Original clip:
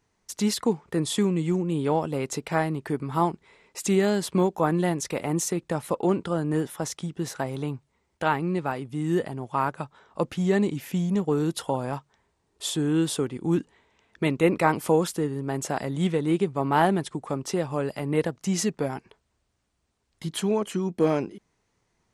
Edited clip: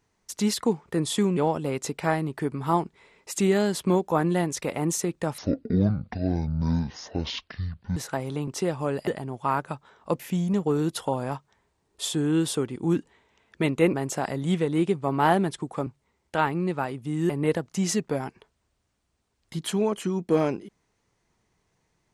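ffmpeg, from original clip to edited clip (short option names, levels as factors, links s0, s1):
-filter_complex "[0:a]asplit=10[s0][s1][s2][s3][s4][s5][s6][s7][s8][s9];[s0]atrim=end=1.372[s10];[s1]atrim=start=1.848:end=5.864[s11];[s2]atrim=start=5.86:end=7.23,asetpts=PTS-STARTPTS,asetrate=23373,aresample=44100,atrim=end_sample=113994,asetpts=PTS-STARTPTS[s12];[s3]atrim=start=7.226:end=7.742[s13];[s4]atrim=start=17.388:end=17.992[s14];[s5]atrim=start=9.168:end=10.292[s15];[s6]atrim=start=10.808:end=14.552[s16];[s7]atrim=start=15.458:end=17.392[s17];[s8]atrim=start=7.738:end=9.172[s18];[s9]atrim=start=17.988[s19];[s10][s11]acrossfade=d=0.004:c1=hsin:c2=hsin[s20];[s20][s12]acrossfade=d=0.004:c1=hsin:c2=hsin[s21];[s21][s13]acrossfade=d=0.004:c1=hsin:c2=hsin[s22];[s22][s14]acrossfade=d=0.004:c1=hsin:c2=hsin[s23];[s23][s15]acrossfade=d=0.004:c1=hsin:c2=hsin[s24];[s24][s16]acrossfade=d=0.004:c1=hsin:c2=hsin[s25];[s25][s17]acrossfade=d=0.004:c1=hsin:c2=hsin[s26];[s26][s18]acrossfade=d=0.004:c1=hsin:c2=hsin[s27];[s27][s19]acrossfade=d=0.004:c1=hsin:c2=hsin"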